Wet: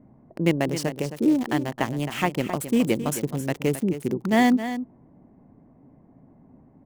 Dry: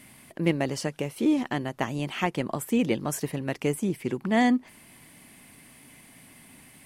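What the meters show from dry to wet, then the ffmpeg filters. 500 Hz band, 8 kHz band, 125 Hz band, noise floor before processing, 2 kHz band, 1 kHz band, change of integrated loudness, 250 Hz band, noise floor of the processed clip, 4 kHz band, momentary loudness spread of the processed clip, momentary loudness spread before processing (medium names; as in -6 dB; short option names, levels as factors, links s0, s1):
+3.0 dB, +2.5 dB, +3.5 dB, -53 dBFS, +2.5 dB, +3.0 dB, +3.0 dB, +3.5 dB, -55 dBFS, +2.5 dB, 8 LU, 8 LU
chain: -filter_complex "[0:a]acrossover=split=860[s0][s1];[s1]aeval=exprs='val(0)*gte(abs(val(0)),0.0168)':c=same[s2];[s0][s2]amix=inputs=2:normalize=0,aecho=1:1:266:0.282,volume=1.41"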